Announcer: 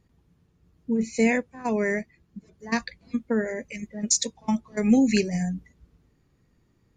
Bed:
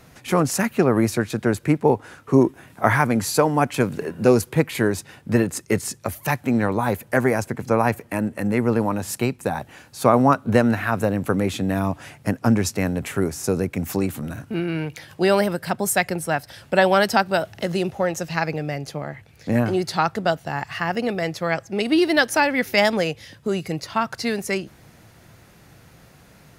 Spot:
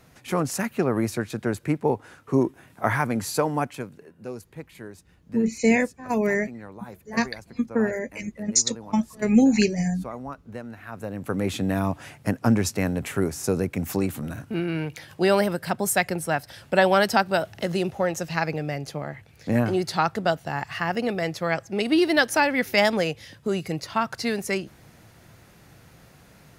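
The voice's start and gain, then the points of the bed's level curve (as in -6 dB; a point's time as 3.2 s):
4.45 s, +2.0 dB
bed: 3.58 s -5.5 dB
4 s -20 dB
10.72 s -20 dB
11.51 s -2 dB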